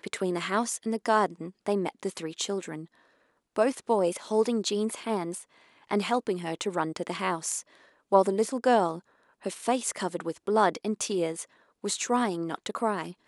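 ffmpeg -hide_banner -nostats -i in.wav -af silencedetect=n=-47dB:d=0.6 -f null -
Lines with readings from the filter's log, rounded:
silence_start: 2.86
silence_end: 3.56 | silence_duration: 0.71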